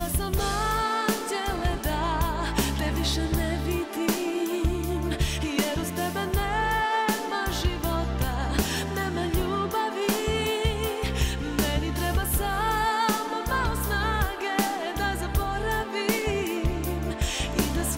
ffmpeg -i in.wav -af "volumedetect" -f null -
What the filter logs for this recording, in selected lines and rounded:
mean_volume: -26.3 dB
max_volume: -12.4 dB